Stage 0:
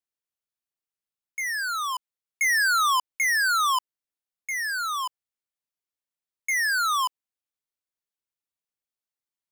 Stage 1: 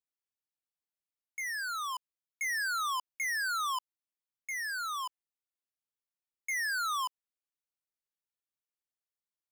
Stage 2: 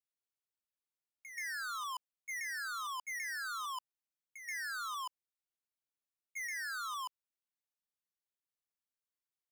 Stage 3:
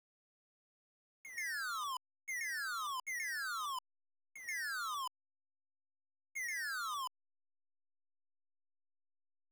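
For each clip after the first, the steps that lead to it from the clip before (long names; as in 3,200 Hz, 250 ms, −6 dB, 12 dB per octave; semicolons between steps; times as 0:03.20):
brickwall limiter −24.5 dBFS, peak gain reduction 3.5 dB; level −7.5 dB
backwards echo 131 ms −6.5 dB; output level in coarse steps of 10 dB
hold until the input has moved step −59 dBFS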